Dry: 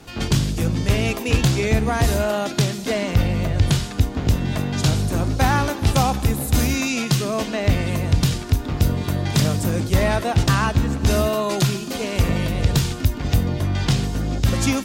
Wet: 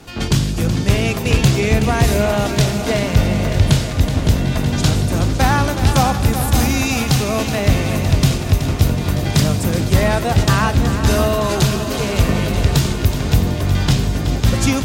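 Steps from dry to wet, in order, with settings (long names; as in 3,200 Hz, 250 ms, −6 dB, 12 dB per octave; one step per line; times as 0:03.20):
echo machine with several playback heads 187 ms, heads second and third, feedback 69%, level −11 dB
level +3 dB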